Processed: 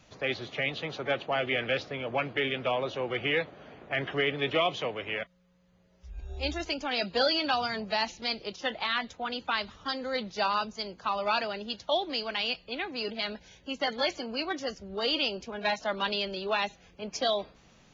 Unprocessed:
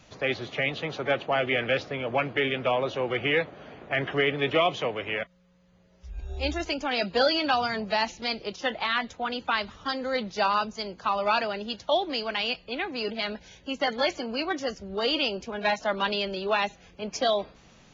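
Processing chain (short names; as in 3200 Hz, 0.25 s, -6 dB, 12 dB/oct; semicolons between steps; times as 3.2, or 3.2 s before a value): dynamic EQ 4100 Hz, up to +4 dB, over -42 dBFS, Q 1.3; gain -4 dB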